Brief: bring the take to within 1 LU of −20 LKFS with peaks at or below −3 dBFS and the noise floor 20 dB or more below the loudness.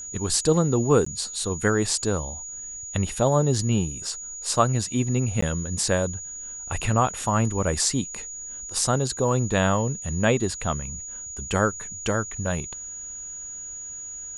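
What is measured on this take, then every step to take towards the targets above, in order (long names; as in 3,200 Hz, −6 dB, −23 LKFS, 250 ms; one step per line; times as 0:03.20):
number of dropouts 2; longest dropout 14 ms; interfering tone 6,800 Hz; level of the tone −34 dBFS; integrated loudness −25.0 LKFS; sample peak −4.5 dBFS; target loudness −20.0 LKFS
→ repair the gap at 0:01.05/0:05.41, 14 ms
notch filter 6,800 Hz, Q 30
level +5 dB
brickwall limiter −3 dBFS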